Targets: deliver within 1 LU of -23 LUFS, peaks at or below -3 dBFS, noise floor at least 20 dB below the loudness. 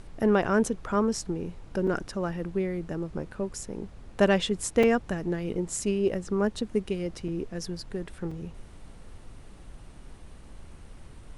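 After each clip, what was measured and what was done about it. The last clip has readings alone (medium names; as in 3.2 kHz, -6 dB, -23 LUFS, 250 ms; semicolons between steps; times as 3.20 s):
dropouts 4; longest dropout 4.3 ms; noise floor -48 dBFS; noise floor target -49 dBFS; loudness -29.0 LUFS; peak level -10.0 dBFS; loudness target -23.0 LUFS
-> interpolate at 1.87/4.83/7.28/8.31 s, 4.3 ms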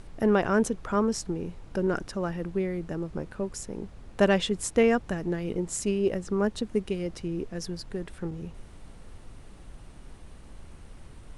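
dropouts 0; noise floor -48 dBFS; noise floor target -49 dBFS
-> noise print and reduce 6 dB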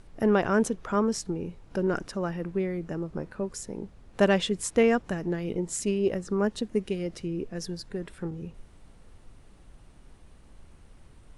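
noise floor -54 dBFS; loudness -29.0 LUFS; peak level -10.0 dBFS; loudness target -23.0 LUFS
-> trim +6 dB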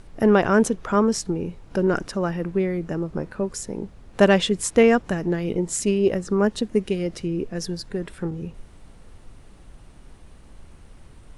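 loudness -23.0 LUFS; peak level -4.0 dBFS; noise floor -48 dBFS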